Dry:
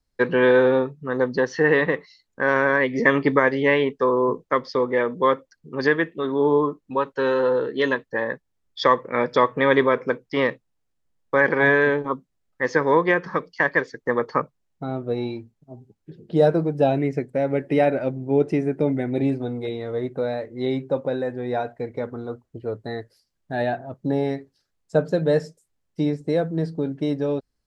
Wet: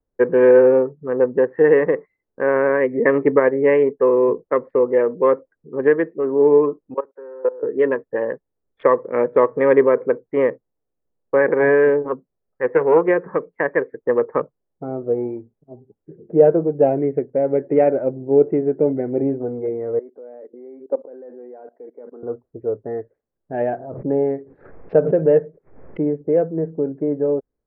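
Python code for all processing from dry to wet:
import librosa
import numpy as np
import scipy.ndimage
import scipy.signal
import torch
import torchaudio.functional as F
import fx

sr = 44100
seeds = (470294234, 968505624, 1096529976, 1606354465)

y = fx.chain(x, sr, fx.highpass(hz=350.0, slope=12),
    fx.level_steps(step_db=20), at=(6.94, 7.63))
y = fx.chain(y, sr, fx.notch(hz=300.0, q=5.5),
    fx.doppler_dist(depth_ms=0.19), at=(12.08, 13.08))
y = fx.chain(y, sr, fx.steep_highpass(hz=220.0, slope=36),
    fx.level_steps(step_db=21), at=(19.99, 22.23))
y = fx.chain(y, sr, fx.high_shelf(hz=3100.0, db=5.5),
    fx.pre_swell(db_per_s=68.0), at=(23.54, 26.03))
y = fx.wiener(y, sr, points=15)
y = scipy.signal.sosfilt(scipy.signal.butter(8, 2600.0, 'lowpass', fs=sr, output='sos'), y)
y = fx.peak_eq(y, sr, hz=450.0, db=11.5, octaves=1.3)
y = y * 10.0 ** (-4.5 / 20.0)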